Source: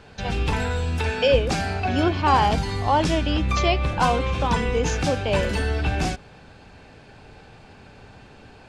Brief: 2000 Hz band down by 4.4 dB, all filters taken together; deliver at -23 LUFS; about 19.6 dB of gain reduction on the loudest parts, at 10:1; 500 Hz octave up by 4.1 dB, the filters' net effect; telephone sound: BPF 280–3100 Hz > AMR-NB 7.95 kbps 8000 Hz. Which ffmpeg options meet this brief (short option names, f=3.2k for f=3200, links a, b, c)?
-af "equalizer=f=500:t=o:g=5.5,equalizer=f=2k:t=o:g=-5.5,acompressor=threshold=-30dB:ratio=10,highpass=280,lowpass=3.1k,volume=14dB" -ar 8000 -c:a libopencore_amrnb -b:a 7950